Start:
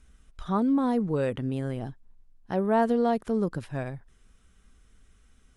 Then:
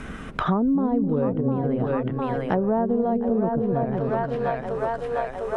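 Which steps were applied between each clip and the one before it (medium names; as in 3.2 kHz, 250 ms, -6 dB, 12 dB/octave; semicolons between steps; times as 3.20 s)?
two-band feedback delay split 490 Hz, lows 258 ms, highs 704 ms, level -4.5 dB; low-pass that closes with the level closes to 860 Hz, closed at -23.5 dBFS; three bands compressed up and down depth 100%; trim +2.5 dB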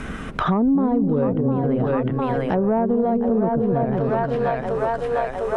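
in parallel at -2.5 dB: peak limiter -18.5 dBFS, peak gain reduction 11 dB; on the sum: saturation -7.5 dBFS, distortion -27 dB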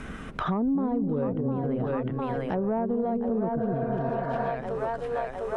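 spectral replace 3.60–4.45 s, 410–2300 Hz both; trim -7.5 dB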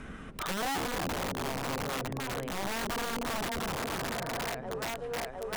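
integer overflow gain 23 dB; trim -5.5 dB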